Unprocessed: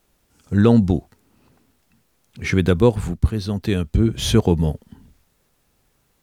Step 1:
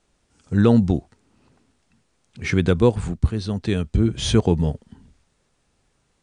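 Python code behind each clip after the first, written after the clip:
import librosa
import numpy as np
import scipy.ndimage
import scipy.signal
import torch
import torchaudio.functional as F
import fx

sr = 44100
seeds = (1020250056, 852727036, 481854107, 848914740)

y = scipy.signal.sosfilt(scipy.signal.butter(16, 9700.0, 'lowpass', fs=sr, output='sos'), x)
y = y * 10.0 ** (-1.5 / 20.0)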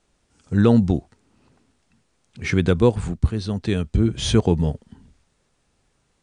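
y = x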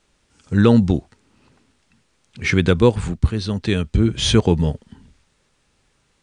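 y = fx.peak_eq(x, sr, hz=2800.0, db=4.5, octaves=2.4)
y = fx.notch(y, sr, hz=710.0, q=12.0)
y = y * 10.0 ** (2.0 / 20.0)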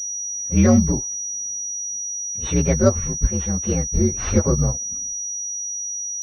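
y = fx.partial_stretch(x, sr, pct=124)
y = fx.pwm(y, sr, carrier_hz=5800.0)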